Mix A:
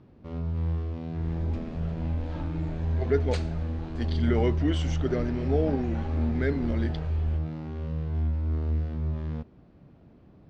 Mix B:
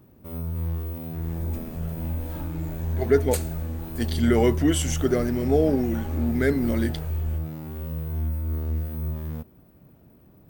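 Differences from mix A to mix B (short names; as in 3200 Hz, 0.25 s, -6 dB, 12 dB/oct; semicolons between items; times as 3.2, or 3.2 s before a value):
speech +6.0 dB; master: remove LPF 4900 Hz 24 dB/oct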